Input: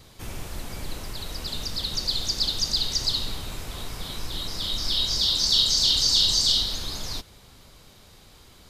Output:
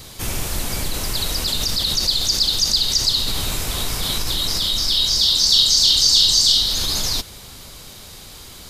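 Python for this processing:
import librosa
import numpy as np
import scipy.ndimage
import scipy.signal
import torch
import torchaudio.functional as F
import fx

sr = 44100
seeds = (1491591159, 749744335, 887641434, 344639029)

p1 = fx.high_shelf(x, sr, hz=3800.0, db=8.5)
p2 = fx.over_compress(p1, sr, threshold_db=-30.0, ratio=-1.0)
p3 = p1 + (p2 * 10.0 ** (-2.0 / 20.0))
y = p3 * 10.0 ** (1.0 / 20.0)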